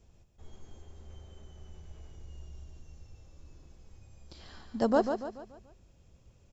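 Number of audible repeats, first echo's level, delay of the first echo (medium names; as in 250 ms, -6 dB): 4, -7.0 dB, 144 ms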